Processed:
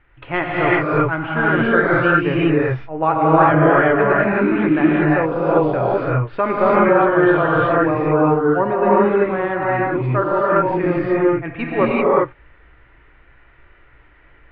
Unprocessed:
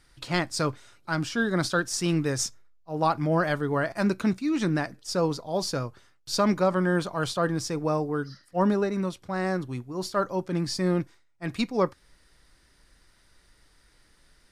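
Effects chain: steep low-pass 2.8 kHz 48 dB/octave; peaking EQ 190 Hz -12.5 dB 0.5 oct; gated-style reverb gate 410 ms rising, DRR -6.5 dB; trim +6 dB

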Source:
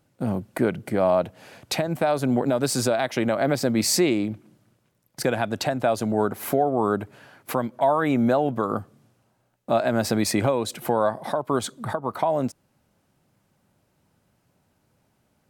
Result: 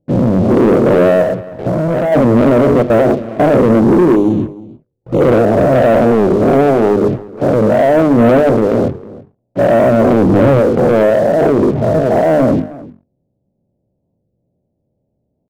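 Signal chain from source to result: every event in the spectrogram widened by 240 ms; 2.82–3.40 s: gate with hold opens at -3 dBFS; steep low-pass 630 Hz 36 dB/octave; hum notches 50/100/150/200/250/300/350/400/450 Hz; waveshaping leveller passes 3; 1.22–2.13 s: compression, threshold -15 dBFS, peak gain reduction 5.5 dB; 4.15–5.21 s: touch-sensitive flanger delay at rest 2.4 ms, full sweep at -14.5 dBFS; echo from a far wall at 54 m, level -19 dB; warped record 45 rpm, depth 160 cents; trim +2.5 dB

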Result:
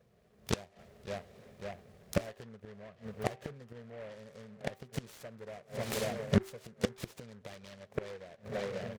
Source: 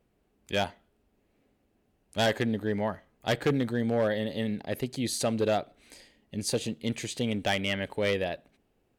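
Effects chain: in parallel at +1.5 dB: compression 12:1, threshold -38 dBFS, peak gain reduction 17 dB; on the sum: high-pass 110 Hz 12 dB/octave; peaking EQ 1.3 kHz -8 dB 2.3 oct; filtered feedback delay 544 ms, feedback 77%, low-pass 2.4 kHz, level -22 dB; level rider gain up to 11 dB; treble shelf 4.8 kHz -7 dB; comb 1.7 ms, depth 90%; inverted gate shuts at -13 dBFS, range -31 dB; flange 1.6 Hz, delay 1.9 ms, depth 1.6 ms, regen +87%; de-hum 386.2 Hz, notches 3; delay time shaken by noise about 1.2 kHz, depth 0.088 ms; trim +3.5 dB

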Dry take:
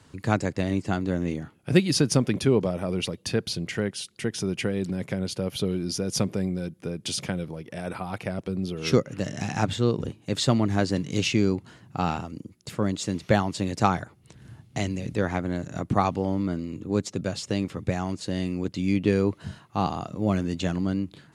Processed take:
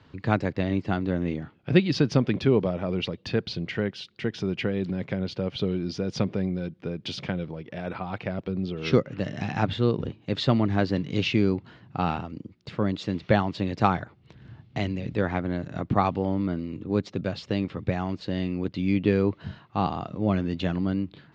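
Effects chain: low-pass 4.2 kHz 24 dB/octave

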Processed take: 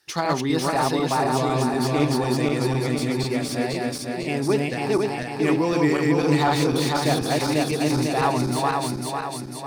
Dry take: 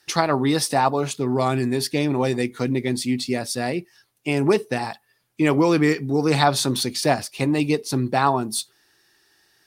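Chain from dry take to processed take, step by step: backward echo that repeats 249 ms, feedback 72%, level -0.5 dB; flange 1.2 Hz, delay 4.5 ms, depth 2.6 ms, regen +90%; slew-rate limiter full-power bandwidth 210 Hz

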